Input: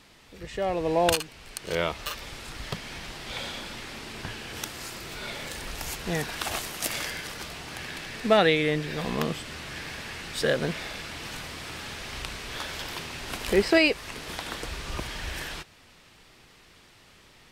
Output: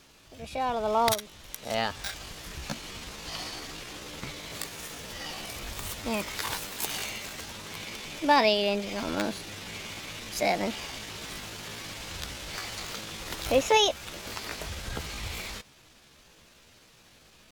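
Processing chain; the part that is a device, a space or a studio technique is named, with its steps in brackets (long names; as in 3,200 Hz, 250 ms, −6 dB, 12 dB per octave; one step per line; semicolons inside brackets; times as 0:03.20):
chipmunk voice (pitch shifter +5 semitones)
level −1.5 dB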